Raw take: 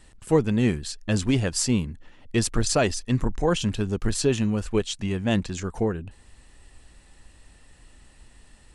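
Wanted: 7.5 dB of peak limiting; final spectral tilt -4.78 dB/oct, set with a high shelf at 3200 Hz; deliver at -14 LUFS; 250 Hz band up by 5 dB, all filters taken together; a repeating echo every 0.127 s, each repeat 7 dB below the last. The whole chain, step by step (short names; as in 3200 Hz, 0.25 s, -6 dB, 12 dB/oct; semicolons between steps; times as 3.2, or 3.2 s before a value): bell 250 Hz +6 dB; high shelf 3200 Hz +5 dB; limiter -13 dBFS; feedback echo 0.127 s, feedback 45%, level -7 dB; gain +9.5 dB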